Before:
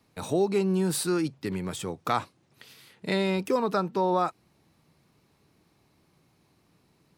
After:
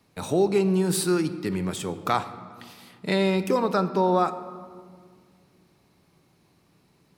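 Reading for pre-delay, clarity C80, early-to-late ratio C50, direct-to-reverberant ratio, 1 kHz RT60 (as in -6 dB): 5 ms, 14.0 dB, 13.0 dB, 11.0 dB, 1.8 s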